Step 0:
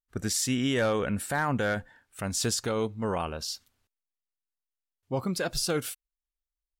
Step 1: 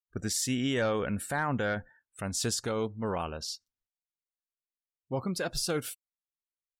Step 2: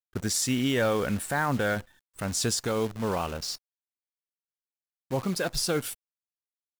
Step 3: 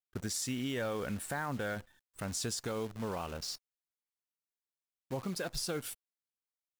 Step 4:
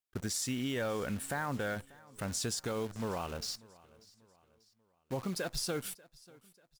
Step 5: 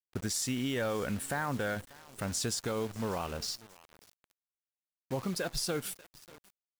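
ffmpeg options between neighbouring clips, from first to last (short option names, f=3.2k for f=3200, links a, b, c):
-af "afftdn=nr=22:nf=-50,volume=-2.5dB"
-af "acrusher=bits=8:dc=4:mix=0:aa=0.000001,volume=3.5dB"
-af "acompressor=threshold=-29dB:ratio=2.5,volume=-5.5dB"
-af "aecho=1:1:590|1180|1770:0.0708|0.0304|0.0131,volume=1dB"
-af "acrusher=bits=8:mix=0:aa=0.000001,volume=2dB"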